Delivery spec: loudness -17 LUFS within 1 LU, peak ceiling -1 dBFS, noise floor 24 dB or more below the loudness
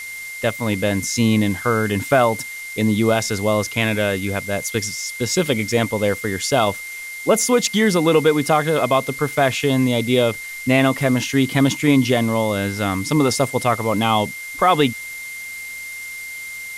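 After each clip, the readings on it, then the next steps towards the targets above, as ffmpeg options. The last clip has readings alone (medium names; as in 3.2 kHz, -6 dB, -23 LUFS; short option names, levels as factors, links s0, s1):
steady tone 2.1 kHz; tone level -30 dBFS; noise floor -32 dBFS; noise floor target -43 dBFS; loudness -19.0 LUFS; peak level -4.5 dBFS; loudness target -17.0 LUFS
-> -af "bandreject=f=2100:w=30"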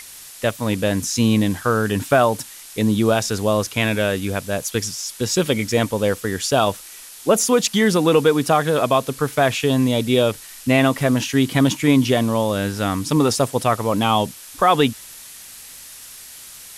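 steady tone not found; noise floor -40 dBFS; noise floor target -43 dBFS
-> -af "afftdn=nr=6:nf=-40"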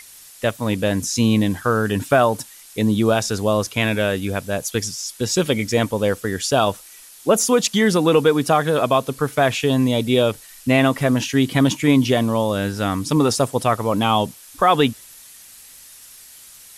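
noise floor -44 dBFS; loudness -19.0 LUFS; peak level -4.5 dBFS; loudness target -17.0 LUFS
-> -af "volume=1.26"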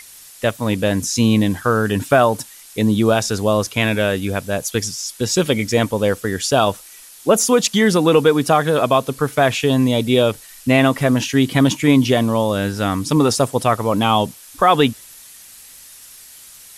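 loudness -17.0 LUFS; peak level -2.5 dBFS; noise floor -42 dBFS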